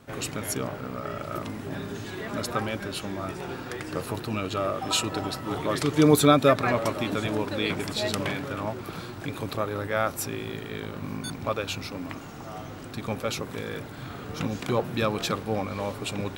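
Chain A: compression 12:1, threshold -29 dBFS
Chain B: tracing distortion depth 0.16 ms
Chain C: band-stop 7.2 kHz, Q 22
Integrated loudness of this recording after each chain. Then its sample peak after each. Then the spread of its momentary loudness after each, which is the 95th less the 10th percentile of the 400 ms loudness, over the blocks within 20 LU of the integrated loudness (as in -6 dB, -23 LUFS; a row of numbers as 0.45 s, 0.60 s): -35.0 LUFS, -28.5 LUFS, -28.5 LUFS; -15.0 dBFS, -6.0 dBFS, -6.0 dBFS; 4 LU, 12 LU, 12 LU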